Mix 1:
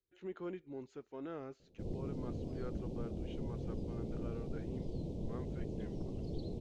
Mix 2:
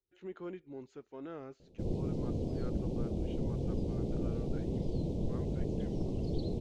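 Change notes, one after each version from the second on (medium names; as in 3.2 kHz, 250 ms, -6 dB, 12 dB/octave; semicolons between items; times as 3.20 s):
background +6.5 dB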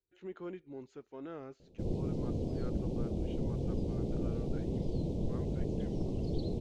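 no change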